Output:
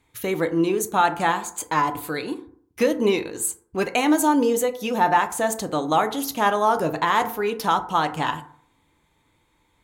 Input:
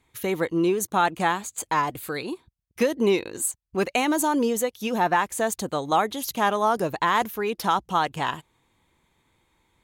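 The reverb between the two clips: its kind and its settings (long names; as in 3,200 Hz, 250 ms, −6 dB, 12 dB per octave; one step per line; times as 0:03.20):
feedback delay network reverb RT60 0.57 s, low-frequency decay 1×, high-frequency decay 0.4×, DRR 7 dB
level +1 dB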